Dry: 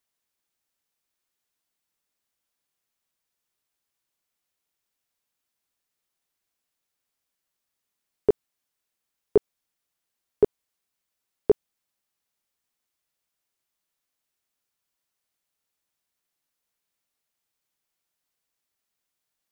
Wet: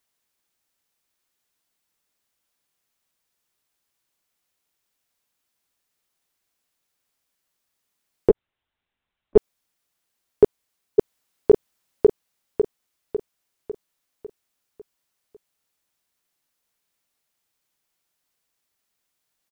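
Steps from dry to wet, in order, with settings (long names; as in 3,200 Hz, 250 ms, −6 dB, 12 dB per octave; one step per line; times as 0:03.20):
0:08.29–0:09.37: linear-prediction vocoder at 8 kHz pitch kept
0:10.43–0:11.51: delay throw 550 ms, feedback 50%, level −0.5 dB
level +5 dB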